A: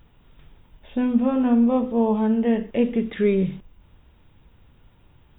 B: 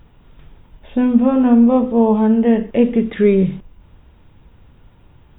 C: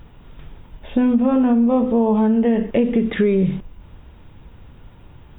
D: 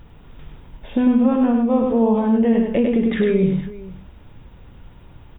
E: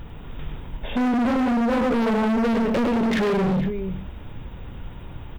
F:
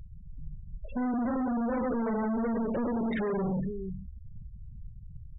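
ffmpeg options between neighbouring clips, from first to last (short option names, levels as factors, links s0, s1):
-af "highshelf=f=2600:g=-6.5,volume=2.24"
-filter_complex "[0:a]asplit=2[s0][s1];[s1]alimiter=limit=0.237:level=0:latency=1,volume=1.26[s2];[s0][s2]amix=inputs=2:normalize=0,acompressor=threshold=0.316:ratio=6,volume=0.708"
-af "aecho=1:1:100|465:0.631|0.126,volume=0.841"
-filter_complex "[0:a]asplit=2[s0][s1];[s1]alimiter=limit=0.168:level=0:latency=1,volume=1.19[s2];[s0][s2]amix=inputs=2:normalize=0,volume=9.44,asoftclip=hard,volume=0.106"
-af "aeval=exprs='val(0)+0.5*0.0075*sgn(val(0))':c=same,afftfilt=real='re*gte(hypot(re,im),0.0794)':imag='im*gte(hypot(re,im),0.0794)':win_size=1024:overlap=0.75,volume=0.355"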